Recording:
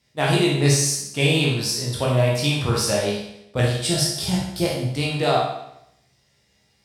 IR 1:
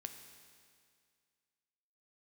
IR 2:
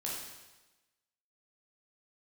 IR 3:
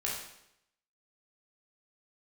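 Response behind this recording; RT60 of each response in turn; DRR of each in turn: 3; 2.1 s, 1.1 s, 0.80 s; 6.0 dB, -5.0 dB, -5.0 dB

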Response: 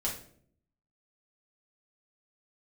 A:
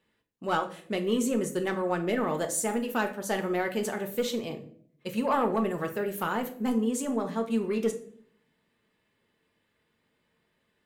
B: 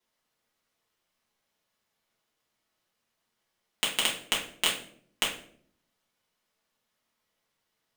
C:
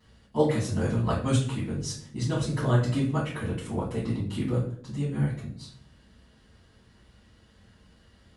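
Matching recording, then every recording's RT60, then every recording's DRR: B; 0.60 s, 0.60 s, 0.60 s; 5.0 dB, -5.0 dB, -14.0 dB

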